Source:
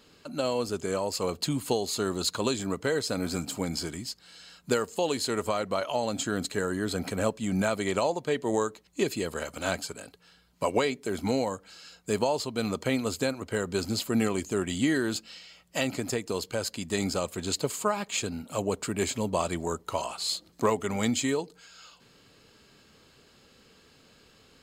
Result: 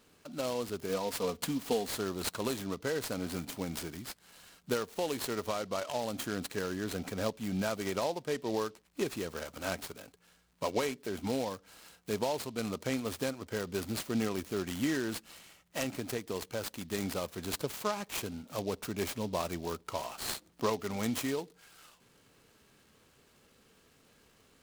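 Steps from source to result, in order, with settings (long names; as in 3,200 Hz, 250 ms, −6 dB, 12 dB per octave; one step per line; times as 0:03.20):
0:00.89–0:01.97: comb filter 4.2 ms, depth 65%
0:07.95–0:09.06: low-pass filter 6,300 Hz 12 dB per octave
surface crackle 240 per second −53 dBFS
short delay modulated by noise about 3,800 Hz, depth 0.045 ms
level −6 dB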